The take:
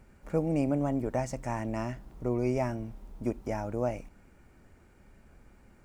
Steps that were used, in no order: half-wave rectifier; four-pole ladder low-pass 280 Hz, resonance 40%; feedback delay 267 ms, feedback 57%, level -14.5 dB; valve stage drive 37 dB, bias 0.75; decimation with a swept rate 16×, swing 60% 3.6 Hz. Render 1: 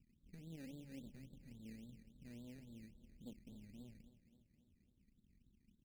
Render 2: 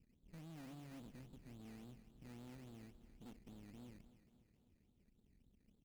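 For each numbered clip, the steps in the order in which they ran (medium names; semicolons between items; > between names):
half-wave rectifier > four-pole ladder low-pass > valve stage > feedback delay > decimation with a swept rate; four-pole ladder low-pass > half-wave rectifier > valve stage > decimation with a swept rate > feedback delay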